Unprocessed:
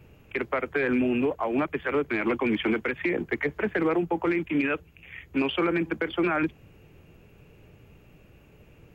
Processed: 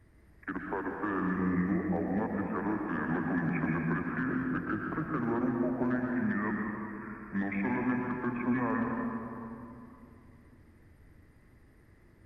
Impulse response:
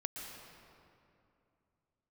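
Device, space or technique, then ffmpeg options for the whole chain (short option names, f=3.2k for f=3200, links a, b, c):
slowed and reverbed: -filter_complex "[0:a]asetrate=32193,aresample=44100[a];[1:a]atrim=start_sample=2205[b];[a][b]afir=irnorm=-1:irlink=0,volume=-5.5dB"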